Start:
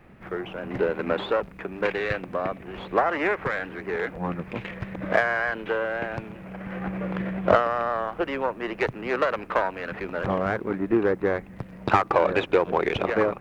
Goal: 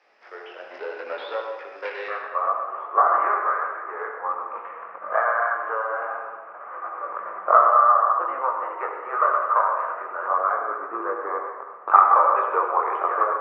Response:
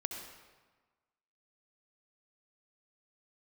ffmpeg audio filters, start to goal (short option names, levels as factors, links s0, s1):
-filter_complex "[0:a]highpass=f=500:w=0.5412,highpass=f=500:w=1.3066,acrossover=split=3300[s0][s1];[s1]acompressor=threshold=0.00126:ratio=4:attack=1:release=60[s2];[s0][s2]amix=inputs=2:normalize=0,asetnsamples=n=441:p=0,asendcmd='2.08 lowpass f 1200',lowpass=f=5200:t=q:w=8.8,flanger=delay=18:depth=4.4:speed=0.73[s3];[1:a]atrim=start_sample=2205[s4];[s3][s4]afir=irnorm=-1:irlink=0,volume=0.891"